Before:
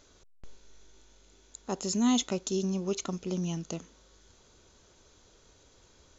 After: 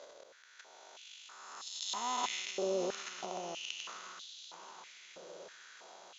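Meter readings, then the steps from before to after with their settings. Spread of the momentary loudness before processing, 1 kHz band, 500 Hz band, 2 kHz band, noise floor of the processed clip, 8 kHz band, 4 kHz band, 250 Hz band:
14 LU, +2.0 dB, −3.5 dB, +3.5 dB, −59 dBFS, can't be measured, −0.5 dB, −17.5 dB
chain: spectrum smeared in time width 485 ms
in parallel at +0.5 dB: downward compressor, threshold −51 dBFS, peak gain reduction 19.5 dB
on the sum: transient designer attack −9 dB, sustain +11 dB
high-frequency loss of the air 64 metres
on a send: feedback echo with a long and a short gap by turns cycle 985 ms, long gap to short 3 to 1, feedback 40%, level −13.5 dB
on the sum: high-pass on a step sequencer 3.1 Hz 550–3,700 Hz
level +2 dB

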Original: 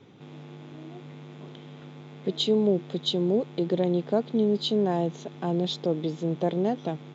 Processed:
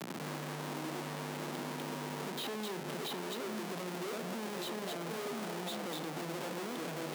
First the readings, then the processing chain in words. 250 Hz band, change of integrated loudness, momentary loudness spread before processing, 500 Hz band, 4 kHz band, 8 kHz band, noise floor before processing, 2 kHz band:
−13.5 dB, −13.0 dB, 20 LU, −13.5 dB, −9.5 dB, can't be measured, −45 dBFS, +5.0 dB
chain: on a send: echo through a band-pass that steps 246 ms, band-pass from 3,300 Hz, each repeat −1.4 octaves, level 0 dB
on the sum: downward compressor 5 to 1, threshold −33 dBFS, peak gain reduction 14 dB
steady tone 810 Hz −56 dBFS
comparator with hysteresis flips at −46.5 dBFS
Butterworth high-pass 160 Hz
low-shelf EQ 470 Hz −3 dB
feedback echo with a band-pass in the loop 61 ms, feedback 82%, band-pass 660 Hz, level −7 dB
multiband upward and downward compressor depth 70%
level −1 dB

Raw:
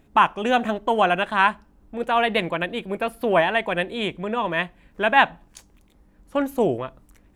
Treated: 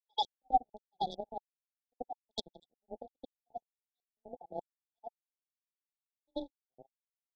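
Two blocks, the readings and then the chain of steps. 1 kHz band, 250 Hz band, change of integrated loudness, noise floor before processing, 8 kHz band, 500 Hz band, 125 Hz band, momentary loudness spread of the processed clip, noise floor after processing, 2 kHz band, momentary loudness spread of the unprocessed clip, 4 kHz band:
−16.0 dB, −23.5 dB, −17.5 dB, −57 dBFS, can't be measured, −23.5 dB, −26.0 dB, 20 LU, below −85 dBFS, below −40 dB, 10 LU, −14.0 dB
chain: time-frequency cells dropped at random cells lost 49%
low-pass that shuts in the quiet parts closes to 1,100 Hz, open at −20.5 dBFS
high-shelf EQ 5,500 Hz −4.5 dB
leveller curve on the samples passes 1
gate pattern ".x..xxx.xxx..x." 120 BPM −60 dB
frequency shifter +18 Hz
echo ahead of the sound 87 ms −15 dB
power curve on the samples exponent 3
auto-filter low-pass square 1.3 Hz 800–3,600 Hz
linear-phase brick-wall band-stop 880–3,300 Hz
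level −3.5 dB

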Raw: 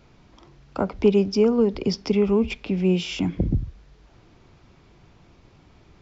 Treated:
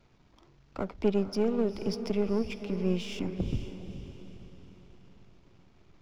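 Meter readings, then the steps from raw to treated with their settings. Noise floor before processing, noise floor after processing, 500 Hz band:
−55 dBFS, −62 dBFS, −9.0 dB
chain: gain on one half-wave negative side −7 dB
feedback delay with all-pass diffusion 468 ms, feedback 45%, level −10.5 dB
level −7 dB

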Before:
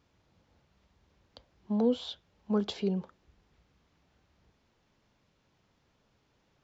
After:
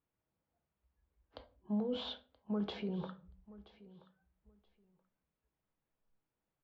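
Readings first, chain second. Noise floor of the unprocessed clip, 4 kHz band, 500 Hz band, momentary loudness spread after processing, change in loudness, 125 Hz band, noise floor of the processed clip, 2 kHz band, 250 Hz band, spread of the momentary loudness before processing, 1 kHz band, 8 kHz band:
−73 dBFS, −4.0 dB, −9.0 dB, 21 LU, −8.0 dB, −5.5 dB, below −85 dBFS, −2.5 dB, −7.0 dB, 11 LU, −5.5 dB, can't be measured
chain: noise reduction from a noise print of the clip's start 25 dB
bass and treble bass −3 dB, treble −12 dB
reversed playback
downward compressor 6 to 1, threshold −36 dBFS, peak gain reduction 13 dB
reversed playback
brickwall limiter −38 dBFS, peak gain reduction 9.5 dB
high-frequency loss of the air 140 metres
on a send: repeating echo 977 ms, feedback 17%, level −19.5 dB
on the sum: rectangular room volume 250 cubic metres, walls furnished, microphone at 0.61 metres
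level +7 dB

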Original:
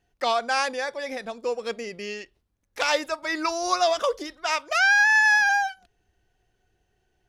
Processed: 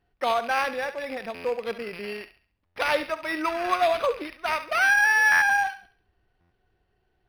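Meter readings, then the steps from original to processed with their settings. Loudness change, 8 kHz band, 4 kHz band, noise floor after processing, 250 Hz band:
−1.0 dB, −5.0 dB, −5.0 dB, −73 dBFS, 0.0 dB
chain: loose part that buzzes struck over −53 dBFS, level −26 dBFS
on a send: feedback echo with a high-pass in the loop 68 ms, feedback 38%, high-pass 840 Hz, level −11 dB
on the sum: buffer that repeats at 0:01.34/0:02.65/0:05.31/0:06.40, samples 512, times 8
linearly interpolated sample-rate reduction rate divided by 6×

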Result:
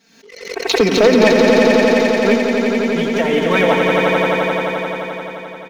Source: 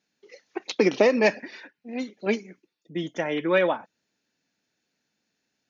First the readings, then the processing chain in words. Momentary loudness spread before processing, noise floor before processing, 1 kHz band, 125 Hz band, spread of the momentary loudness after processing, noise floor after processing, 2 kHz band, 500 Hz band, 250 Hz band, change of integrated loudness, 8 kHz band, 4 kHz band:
19 LU, −79 dBFS, +14.0 dB, +14.5 dB, 14 LU, −42 dBFS, +12.5 dB, +12.0 dB, +13.5 dB, +10.5 dB, can't be measured, +15.5 dB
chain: comb filter 4.4 ms, depth 94%
leveller curve on the samples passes 2
on a send: echo that builds up and dies away 87 ms, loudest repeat 5, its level −5 dB
on the sum: background raised ahead of every attack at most 68 dB per second
level −1.5 dB

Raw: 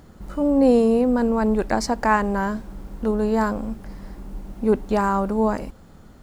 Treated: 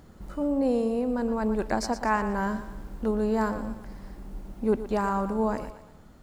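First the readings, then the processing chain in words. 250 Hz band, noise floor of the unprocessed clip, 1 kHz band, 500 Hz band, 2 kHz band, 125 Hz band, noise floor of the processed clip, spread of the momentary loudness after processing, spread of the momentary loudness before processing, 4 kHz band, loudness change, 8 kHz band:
−7.0 dB, −47 dBFS, −6.0 dB, −6.5 dB, −6.0 dB, −5.5 dB, −51 dBFS, 16 LU, 22 LU, −5.5 dB, −7.0 dB, −5.5 dB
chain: speech leveller within 3 dB 0.5 s
on a send: feedback echo with a high-pass in the loop 118 ms, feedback 45%, high-pass 220 Hz, level −11.5 dB
on the sum: level −6.5 dB

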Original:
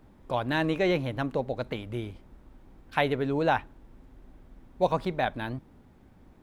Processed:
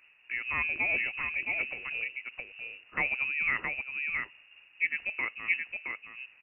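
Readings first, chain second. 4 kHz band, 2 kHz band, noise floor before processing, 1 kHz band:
−7.0 dB, +7.0 dB, −57 dBFS, −12.0 dB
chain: high-pass filter 120 Hz 6 dB per octave
dynamic equaliser 1,400 Hz, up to −6 dB, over −42 dBFS, Q 1.5
single-tap delay 669 ms −4 dB
voice inversion scrambler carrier 2,800 Hz
amplitude modulation by smooth noise, depth 65%

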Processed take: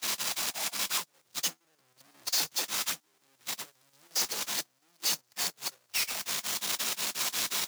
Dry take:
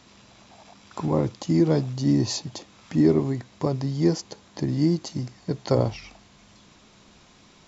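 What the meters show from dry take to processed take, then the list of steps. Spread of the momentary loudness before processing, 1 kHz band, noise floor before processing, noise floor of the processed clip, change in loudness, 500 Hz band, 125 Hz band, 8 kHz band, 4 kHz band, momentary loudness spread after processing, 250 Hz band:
13 LU, −3.0 dB, −55 dBFS, −72 dBFS, −6.5 dB, −21.0 dB, −32.5 dB, can't be measured, +7.5 dB, 10 LU, −28.5 dB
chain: sign of each sample alone
high-shelf EQ 3,700 Hz +4 dB
square-wave tremolo 5.6 Hz, depth 60%, duty 80%
high-pass filter 1,100 Hz 6 dB per octave
on a send: delay with a high-pass on its return 60 ms, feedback 76%, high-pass 4,800 Hz, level −8 dB
on the sum: noise gate −23 dBFS, range −45 dB
multiband upward and downward compressor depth 70%
level +2.5 dB

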